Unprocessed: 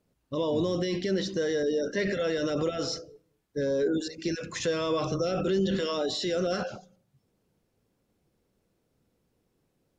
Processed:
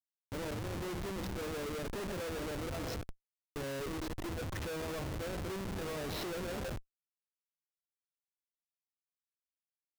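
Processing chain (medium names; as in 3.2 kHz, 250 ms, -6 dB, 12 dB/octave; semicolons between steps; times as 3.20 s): level-controlled noise filter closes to 1 kHz, open at -23 dBFS; resonant low shelf 120 Hz +7.5 dB, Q 3; peak limiter -27 dBFS, peak gain reduction 9.5 dB; compression 16:1, threshold -40 dBFS, peak gain reduction 10.5 dB; Schmitt trigger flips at -42.5 dBFS; trim +7 dB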